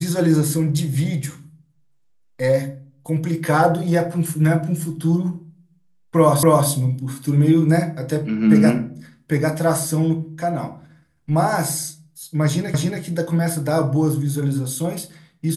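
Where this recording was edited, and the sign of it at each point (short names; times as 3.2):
6.43 repeat of the last 0.27 s
12.74 repeat of the last 0.28 s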